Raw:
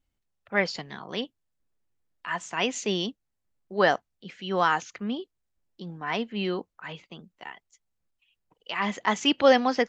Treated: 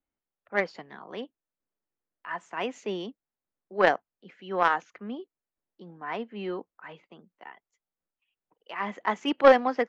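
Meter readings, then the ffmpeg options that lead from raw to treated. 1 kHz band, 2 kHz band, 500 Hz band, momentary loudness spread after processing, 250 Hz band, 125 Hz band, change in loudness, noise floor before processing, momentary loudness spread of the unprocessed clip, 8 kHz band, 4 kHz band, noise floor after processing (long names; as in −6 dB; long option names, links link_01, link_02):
0.0 dB, −2.0 dB, +0.5 dB, 21 LU, −4.5 dB, −8.0 dB, −0.5 dB, −80 dBFS, 21 LU, below −15 dB, −9.5 dB, below −85 dBFS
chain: -filter_complex "[0:a]aeval=exprs='0.473*(cos(1*acos(clip(val(0)/0.473,-1,1)))-cos(1*PI/2))+0.211*(cos(2*acos(clip(val(0)/0.473,-1,1)))-cos(2*PI/2))+0.119*(cos(3*acos(clip(val(0)/0.473,-1,1)))-cos(3*PI/2))+0.0473*(cos(4*acos(clip(val(0)/0.473,-1,1)))-cos(4*PI/2))+0.00335*(cos(5*acos(clip(val(0)/0.473,-1,1)))-cos(5*PI/2))':channel_layout=same,acrossover=split=210 2200:gain=0.2 1 0.178[link_01][link_02][link_03];[link_01][link_02][link_03]amix=inputs=3:normalize=0,volume=8dB"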